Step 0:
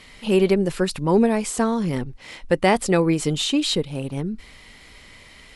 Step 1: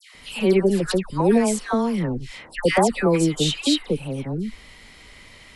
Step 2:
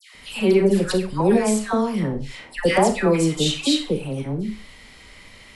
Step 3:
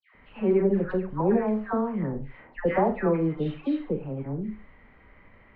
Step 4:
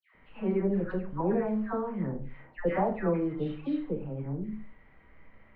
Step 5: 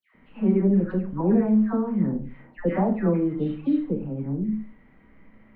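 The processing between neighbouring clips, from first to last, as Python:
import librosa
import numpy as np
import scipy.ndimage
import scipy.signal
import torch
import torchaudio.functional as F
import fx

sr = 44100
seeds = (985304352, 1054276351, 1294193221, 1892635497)

y1 = fx.dispersion(x, sr, late='lows', ms=148.0, hz=1500.0)
y2 = fx.rev_schroeder(y1, sr, rt60_s=0.33, comb_ms=29, drr_db=7.0)
y3 = scipy.signal.sosfilt(scipy.signal.butter(4, 1800.0, 'lowpass', fs=sr, output='sos'), y2)
y3 = y3 * 10.0 ** (-5.5 / 20.0)
y4 = fx.room_shoebox(y3, sr, seeds[0], volume_m3=150.0, walls='furnished', distance_m=0.65)
y4 = y4 * 10.0 ** (-5.5 / 20.0)
y5 = fx.peak_eq(y4, sr, hz=230.0, db=12.0, octaves=1.1)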